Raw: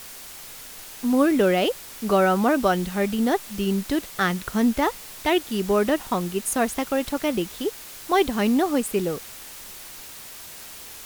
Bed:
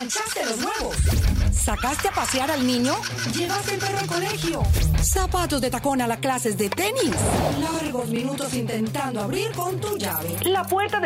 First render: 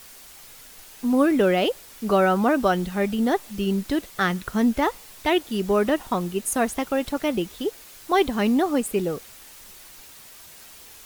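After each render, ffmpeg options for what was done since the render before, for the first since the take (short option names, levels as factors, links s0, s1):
-af "afftdn=nr=6:nf=-41"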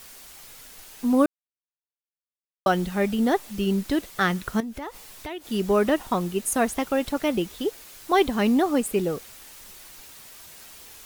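-filter_complex "[0:a]asettb=1/sr,asplit=3[s0][s1][s2];[s0]atrim=end=4.604[s3];[s1]atrim=start=4.6:end=5.46,asetpts=PTS-STARTPTS,afade=t=in:d=0.004:c=qsin,afade=t=out:st=0.856:d=0.004:c=qsin,acompressor=threshold=0.0251:ratio=6:attack=3.2:release=140:knee=1:detection=peak[s4];[s2]atrim=start=5.456[s5];[s3][s4]acrossfade=d=0.004:c1=hsin:c2=qsin[s6];[s6][s5]acrossfade=d=0.004:c1=qsin:c2=hsin,asplit=3[s7][s8][s9];[s7]atrim=end=1.26,asetpts=PTS-STARTPTS,afade=t=out:st=1.256:d=0.004:c=hsin[s10];[s8]atrim=start=1.26:end=2.66,asetpts=PTS-STARTPTS,volume=0[s11];[s9]atrim=start=2.66,asetpts=PTS-STARTPTS,afade=t=in:d=0.004:c=hsin[s12];[s10][s11][s12]concat=n=3:v=0:a=1"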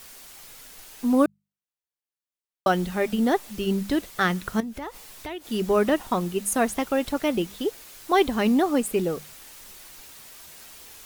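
-af "bandreject=f=50:t=h:w=6,bandreject=f=100:t=h:w=6,bandreject=f=150:t=h:w=6,bandreject=f=200:t=h:w=6"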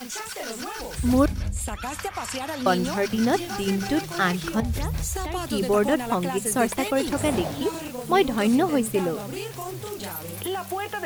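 -filter_complex "[1:a]volume=0.398[s0];[0:a][s0]amix=inputs=2:normalize=0"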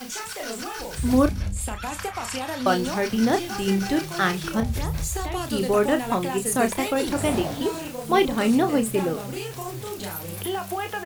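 -filter_complex "[0:a]asplit=2[s0][s1];[s1]adelay=31,volume=0.376[s2];[s0][s2]amix=inputs=2:normalize=0"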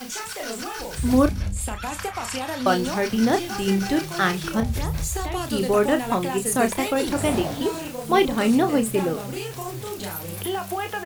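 -af "volume=1.12"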